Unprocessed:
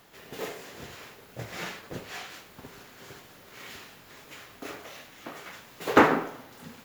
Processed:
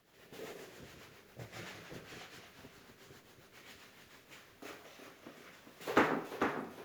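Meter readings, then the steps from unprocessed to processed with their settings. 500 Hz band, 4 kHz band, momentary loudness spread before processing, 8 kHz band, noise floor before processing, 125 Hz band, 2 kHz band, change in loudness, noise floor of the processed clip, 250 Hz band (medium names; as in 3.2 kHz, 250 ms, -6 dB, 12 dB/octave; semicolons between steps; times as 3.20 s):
-10.0 dB, -9.5 dB, 24 LU, -9.5 dB, -53 dBFS, -9.5 dB, -9.0 dB, -10.0 dB, -63 dBFS, -9.5 dB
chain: rotary cabinet horn 7.5 Hz, later 0.75 Hz, at 3.84 s; ever faster or slower copies 91 ms, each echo -1 st, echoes 3, each echo -6 dB; trim -9 dB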